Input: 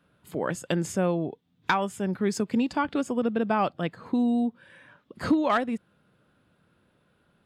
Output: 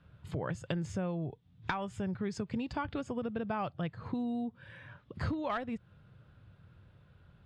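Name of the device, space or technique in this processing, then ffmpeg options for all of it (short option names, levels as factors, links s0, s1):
jukebox: -af "lowpass=5200,lowshelf=f=160:t=q:w=1.5:g=13,acompressor=threshold=0.0178:ratio=3"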